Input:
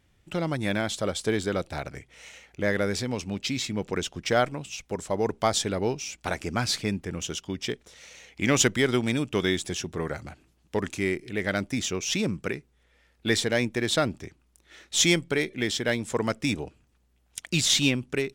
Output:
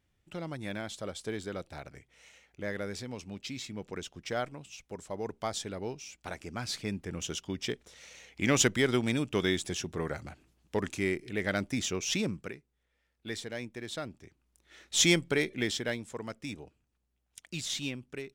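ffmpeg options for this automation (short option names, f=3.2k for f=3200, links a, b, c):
-af "volume=8dB,afade=t=in:st=6.59:d=0.72:silence=0.446684,afade=t=out:st=12.17:d=0.4:silence=0.298538,afade=t=in:st=14.2:d=0.85:silence=0.266073,afade=t=out:st=15.55:d=0.57:silence=0.298538"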